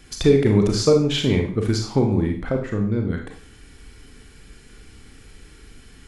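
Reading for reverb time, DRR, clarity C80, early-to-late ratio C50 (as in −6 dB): 0.45 s, 2.5 dB, 11.0 dB, 6.5 dB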